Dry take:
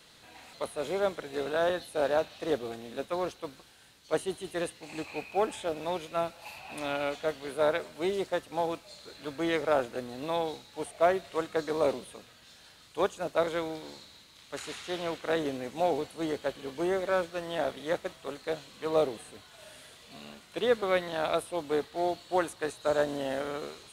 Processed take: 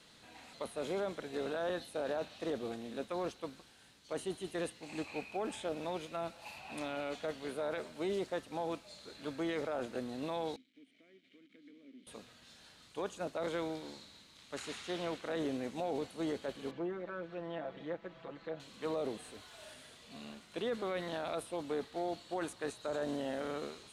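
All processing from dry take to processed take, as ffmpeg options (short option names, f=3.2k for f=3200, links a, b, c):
-filter_complex "[0:a]asettb=1/sr,asplit=3[a][b][c];[a]atrim=end=10.564[d];[b]atrim=start=10.56:end=12.07,asetpts=PTS-STARTPTS,afade=t=in:d=0.004:c=qsin,afade=t=out:st=1.506:d=0.004:c=qsin,acompressor=threshold=-42dB:ratio=3:attack=3.2:release=140:knee=1:detection=peak,acrusher=bits=7:mix=0:aa=0.5,asplit=3[e][f][g];[e]bandpass=f=270:t=q:w=8,volume=0dB[h];[f]bandpass=f=2.29k:t=q:w=8,volume=-6dB[i];[g]bandpass=f=3.01k:t=q:w=8,volume=-9dB[j];[h][i][j]amix=inputs=3:normalize=0[k];[c]atrim=start=12.066[l];[d][k]acrossfade=d=0.004:c1=hsin:c2=qsin[m];[m][l]acrossfade=d=0.004:c1=qsin:c2=hsin,asettb=1/sr,asplit=3[n][o][p];[n]atrim=end=16.714[q];[o]atrim=start=16.71:end=18.6,asetpts=PTS-STARTPTS,afade=t=in:d=0.004:c=qsin,afade=t=out:st=1.886:d=0.004:c=qsin,lowpass=2.4k,acompressor=threshold=-46dB:ratio=2:attack=3.2:release=140:knee=1:detection=peak,aecho=1:1:6:0.99,atrim=end_sample=83349[r];[p]atrim=start=18.596[s];[q][r]acrossfade=d=0.004:c1=hsin:c2=qsin[t];[t][s]acrossfade=d=0.004:c1=qsin:c2=hsin,asettb=1/sr,asplit=3[u][v][w];[u]atrim=end=19.234[x];[v]atrim=start=19.23:end=19.74,asetpts=PTS-STARTPTS,afade=t=in:d=0.004:c=qsin,afade=t=out:st=0.506:d=0.004:c=qsin,aeval=exprs='val(0)+0.5*0.00211*sgn(val(0))':c=same,equalizer=f=170:t=o:w=0.88:g=-7.5[y];[w]atrim=start=19.736[z];[x][y]acrossfade=d=0.004:c1=hsin:c2=qsin[aa];[aa][z]acrossfade=d=0.004:c1=qsin:c2=hsin,lowpass=11k,equalizer=f=230:t=o:w=0.86:g=5,alimiter=limit=-24dB:level=0:latency=1:release=21,volume=-4dB"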